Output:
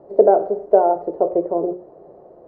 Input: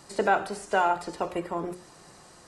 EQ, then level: synth low-pass 630 Hz, resonance Q 3.9; bell 410 Hz +13 dB 0.94 oct; -2.0 dB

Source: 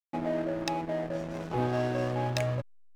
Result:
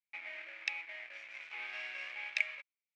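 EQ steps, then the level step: ladder band-pass 2400 Hz, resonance 80%; +8.0 dB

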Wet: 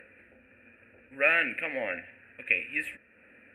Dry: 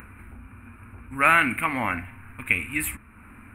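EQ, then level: vowel filter e; +8.0 dB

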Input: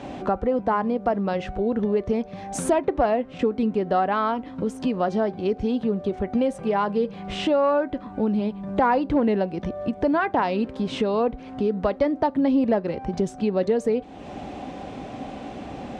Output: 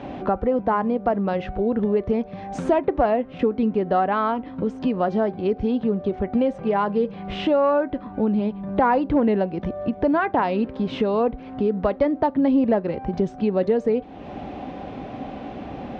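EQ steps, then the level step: air absorption 190 m; +2.0 dB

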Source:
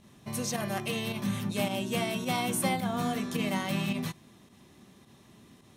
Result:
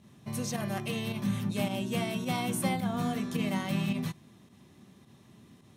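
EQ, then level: HPF 93 Hz; tone controls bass +3 dB, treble -1 dB; low shelf 130 Hz +6.5 dB; -3.0 dB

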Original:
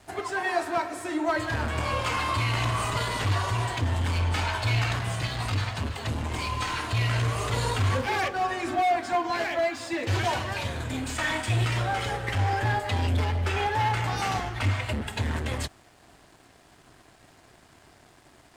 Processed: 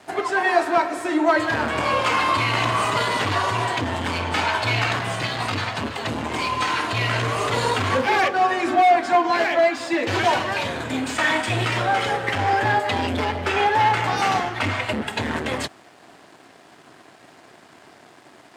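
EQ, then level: HPF 200 Hz 12 dB/oct; high shelf 6000 Hz -9 dB; +8.5 dB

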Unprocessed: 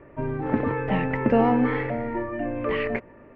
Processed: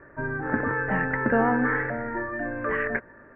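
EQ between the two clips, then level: ladder low-pass 1700 Hz, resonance 80%; +8.5 dB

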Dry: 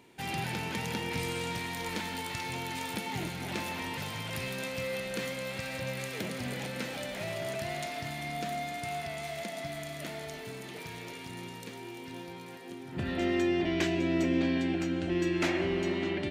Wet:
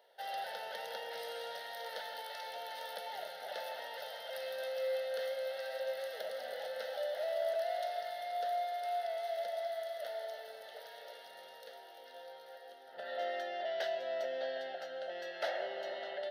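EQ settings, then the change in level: ladder high-pass 500 Hz, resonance 60%; fixed phaser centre 1600 Hz, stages 8; +5.5 dB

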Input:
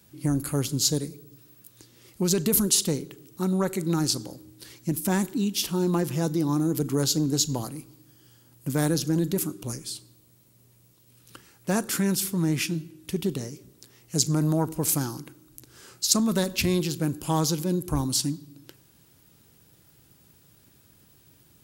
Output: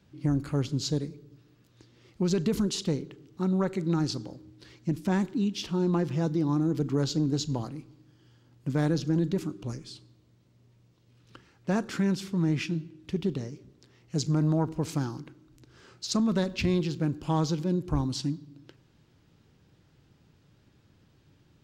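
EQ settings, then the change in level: air absorption 170 m; low shelf 190 Hz +3 dB; high shelf 7800 Hz +4.5 dB; -2.5 dB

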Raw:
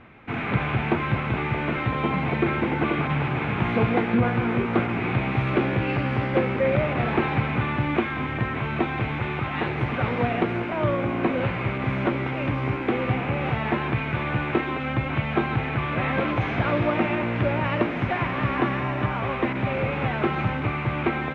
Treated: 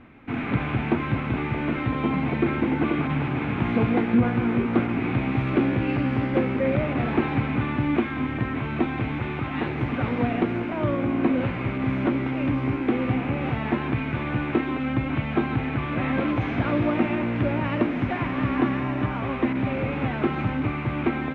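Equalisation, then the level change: low shelf 77 Hz +6.5 dB; bell 270 Hz +10 dB 0.49 oct; -3.5 dB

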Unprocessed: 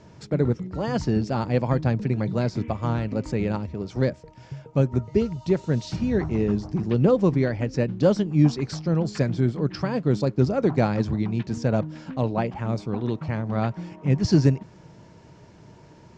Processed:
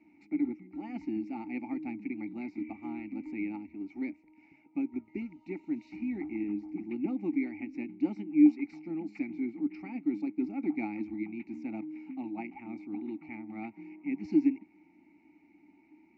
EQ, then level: vowel filter u; band shelf 2800 Hz +11 dB 1.2 oct; fixed phaser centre 670 Hz, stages 8; +1.5 dB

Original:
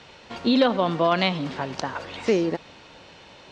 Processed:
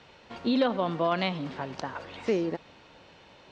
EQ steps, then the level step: high shelf 4200 Hz -6.5 dB; -5.5 dB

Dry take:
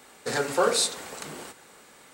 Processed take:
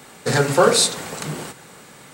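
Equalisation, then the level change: bell 140 Hz +12 dB 1 oct; +7.5 dB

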